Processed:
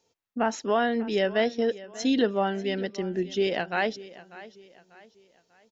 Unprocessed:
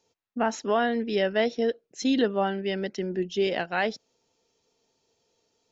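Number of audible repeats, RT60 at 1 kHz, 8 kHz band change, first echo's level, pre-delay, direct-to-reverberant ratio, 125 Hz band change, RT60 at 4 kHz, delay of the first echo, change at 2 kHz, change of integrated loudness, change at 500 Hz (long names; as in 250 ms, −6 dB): 3, no reverb audible, can't be measured, −18.0 dB, no reverb audible, no reverb audible, 0.0 dB, no reverb audible, 593 ms, 0.0 dB, 0.0 dB, 0.0 dB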